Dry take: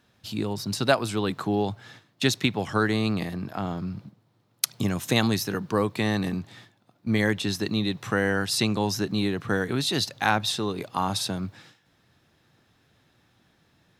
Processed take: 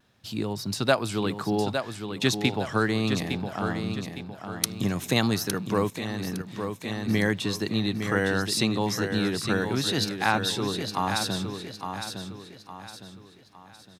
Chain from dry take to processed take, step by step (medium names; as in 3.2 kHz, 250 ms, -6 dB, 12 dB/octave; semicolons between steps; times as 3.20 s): vibrato 0.81 Hz 28 cents; feedback delay 860 ms, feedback 39%, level -7 dB; 5.89–6.49 s: level held to a coarse grid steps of 10 dB; trim -1 dB